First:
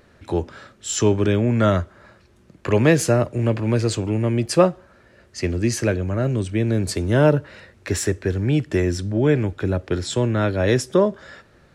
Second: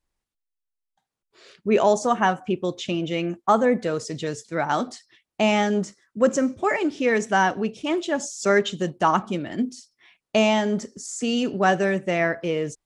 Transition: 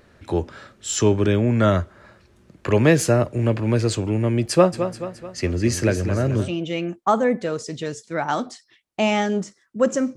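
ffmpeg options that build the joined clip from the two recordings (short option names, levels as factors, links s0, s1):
-filter_complex "[0:a]asplit=3[s0][s1][s2];[s0]afade=t=out:st=4.72:d=0.02[s3];[s1]aecho=1:1:216|432|648|864|1080:0.335|0.164|0.0804|0.0394|0.0193,afade=t=in:st=4.72:d=0.02,afade=t=out:st=6.53:d=0.02[s4];[s2]afade=t=in:st=6.53:d=0.02[s5];[s3][s4][s5]amix=inputs=3:normalize=0,apad=whole_dur=10.16,atrim=end=10.16,atrim=end=6.53,asetpts=PTS-STARTPTS[s6];[1:a]atrim=start=2.82:end=6.57,asetpts=PTS-STARTPTS[s7];[s6][s7]acrossfade=d=0.12:c1=tri:c2=tri"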